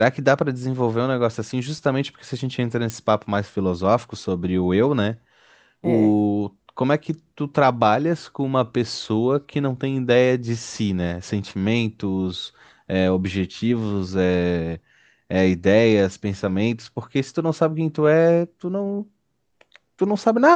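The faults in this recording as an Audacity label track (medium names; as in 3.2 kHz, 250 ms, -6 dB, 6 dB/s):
2.900000	2.900000	pop -12 dBFS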